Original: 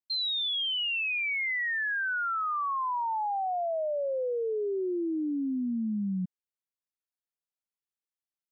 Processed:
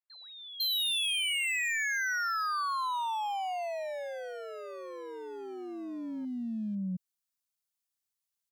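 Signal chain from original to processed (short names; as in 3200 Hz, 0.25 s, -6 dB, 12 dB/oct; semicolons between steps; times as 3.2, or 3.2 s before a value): high shelf 3100 Hz +8 dB; hard clip -29.5 dBFS, distortion -13 dB; bell 370 Hz -8 dB 1.4 oct; three bands offset in time mids, highs, lows 0.5/0.71 s, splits 460/2300 Hz; gain +1 dB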